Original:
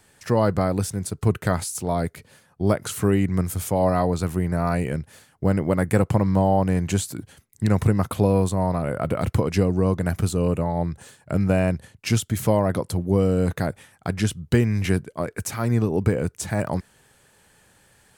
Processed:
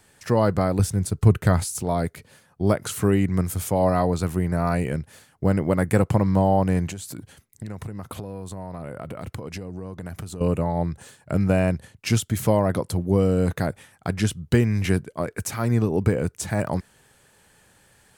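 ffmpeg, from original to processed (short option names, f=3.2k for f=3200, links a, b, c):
-filter_complex "[0:a]asettb=1/sr,asplit=3[a][b][c];[a]atrim=end=0.794[d];[b]atrim=start=0.79:end=1.83,asetpts=PTS-STARTPTS,afade=t=in:d=0.004:c=qsin,afade=t=out:st=1.036:d=0.004:c=qsin,lowshelf=f=130:g=10[e];[c]atrim=start=1.826[f];[d][e]acrossfade=d=0.004:c1=hsin:c2=qsin[g];[g][f]acrossfade=d=0.004:c1=qsin:c2=hsin,asettb=1/sr,asplit=3[h][i][j];[h]atrim=end=6.884[k];[i]atrim=start=6.88:end=10.41,asetpts=PTS-STARTPTS,afade=t=in:d=0.004:c=qsin,afade=t=out:st=3.526:d=0.004:c=qsin,acompressor=threshold=-30dB:ratio=8:attack=3.2:release=140:knee=1:detection=peak[l];[j]atrim=start=10.406[m];[k][l]acrossfade=d=0.004:c1=hsin:c2=qsin[n];[n][m]acrossfade=d=0.004:c1=qsin:c2=hsin"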